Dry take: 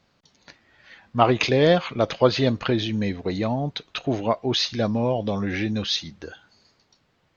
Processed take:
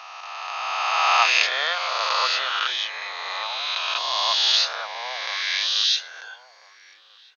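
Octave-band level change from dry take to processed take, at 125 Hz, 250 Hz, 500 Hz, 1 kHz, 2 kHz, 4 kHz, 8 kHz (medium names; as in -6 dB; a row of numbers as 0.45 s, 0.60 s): under -40 dB, under -35 dB, -13.5 dB, +4.0 dB, +8.0 dB, +8.0 dB, no reading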